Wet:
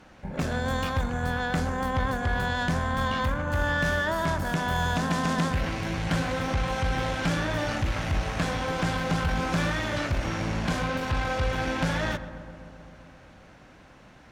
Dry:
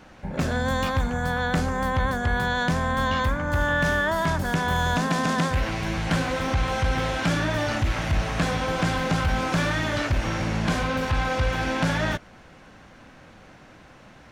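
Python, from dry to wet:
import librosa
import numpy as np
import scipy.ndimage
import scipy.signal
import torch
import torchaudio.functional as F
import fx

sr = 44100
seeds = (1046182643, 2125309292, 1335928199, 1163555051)

y = fx.cheby_harmonics(x, sr, harmonics=(4,), levels_db=(-22,), full_scale_db=-15.0)
y = fx.echo_filtered(y, sr, ms=131, feedback_pct=79, hz=2000.0, wet_db=-13.0)
y = y * librosa.db_to_amplitude(-3.5)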